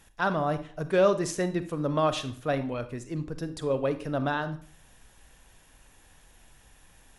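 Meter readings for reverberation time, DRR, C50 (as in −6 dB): 0.45 s, 11.0 dB, 13.0 dB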